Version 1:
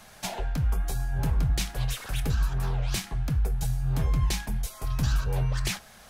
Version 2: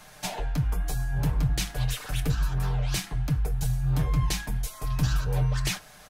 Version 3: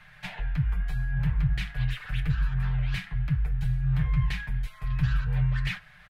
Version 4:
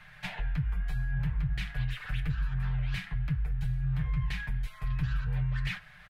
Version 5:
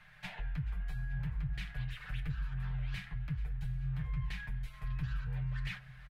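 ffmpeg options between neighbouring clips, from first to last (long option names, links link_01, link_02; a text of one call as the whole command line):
ffmpeg -i in.wav -af "aecho=1:1:6.7:0.51" out.wav
ffmpeg -i in.wav -af "firequalizer=gain_entry='entry(160,0);entry(250,-18);entry(1800,4);entry(6000,-21)':delay=0.05:min_phase=1" out.wav
ffmpeg -i in.wav -af "acompressor=threshold=-28dB:ratio=3" out.wav
ffmpeg -i in.wav -af "aecho=1:1:433|866|1299|1732|2165:0.112|0.0662|0.0391|0.023|0.0136,volume=-6.5dB" out.wav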